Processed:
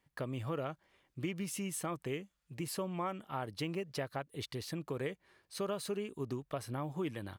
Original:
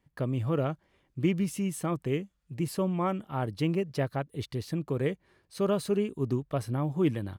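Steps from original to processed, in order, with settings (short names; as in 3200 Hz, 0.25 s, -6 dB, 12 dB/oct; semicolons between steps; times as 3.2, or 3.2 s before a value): low shelf 430 Hz -10.5 dB; compressor 3:1, threshold -36 dBFS, peak gain reduction 7 dB; gain +1 dB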